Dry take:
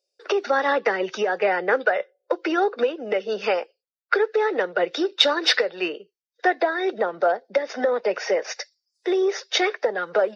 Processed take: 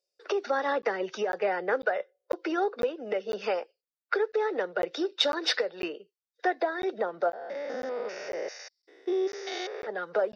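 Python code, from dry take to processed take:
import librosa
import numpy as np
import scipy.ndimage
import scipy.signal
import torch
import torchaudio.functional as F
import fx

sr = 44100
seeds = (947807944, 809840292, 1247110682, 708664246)

y = fx.spec_steps(x, sr, hold_ms=200, at=(7.28, 9.87), fade=0.02)
y = fx.dynamic_eq(y, sr, hz=2400.0, q=0.99, threshold_db=-35.0, ratio=4.0, max_db=-4)
y = fx.buffer_crackle(y, sr, first_s=0.82, period_s=0.5, block=512, kind='zero')
y = F.gain(torch.from_numpy(y), -6.0).numpy()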